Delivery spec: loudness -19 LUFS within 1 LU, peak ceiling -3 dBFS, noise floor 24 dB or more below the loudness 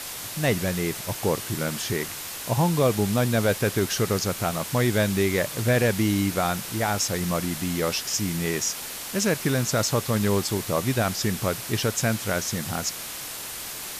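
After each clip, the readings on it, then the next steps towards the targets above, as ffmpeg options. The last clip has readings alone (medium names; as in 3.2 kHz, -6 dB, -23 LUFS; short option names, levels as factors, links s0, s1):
noise floor -35 dBFS; noise floor target -49 dBFS; loudness -25.0 LUFS; peak level -10.5 dBFS; loudness target -19.0 LUFS
-> -af "afftdn=nr=14:nf=-35"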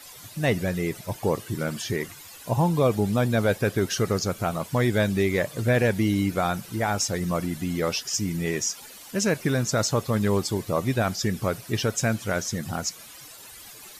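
noise floor -45 dBFS; noise floor target -50 dBFS
-> -af "afftdn=nr=6:nf=-45"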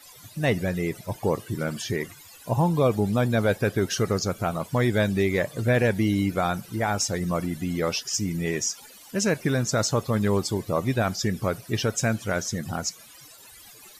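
noise floor -48 dBFS; noise floor target -50 dBFS
-> -af "afftdn=nr=6:nf=-48"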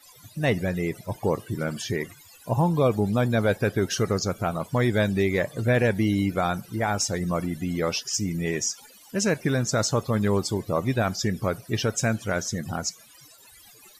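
noise floor -52 dBFS; loudness -25.5 LUFS; peak level -11.5 dBFS; loudness target -19.0 LUFS
-> -af "volume=2.11"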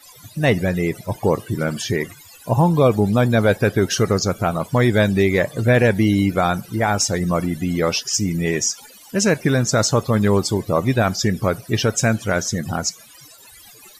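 loudness -19.0 LUFS; peak level -5.0 dBFS; noise floor -45 dBFS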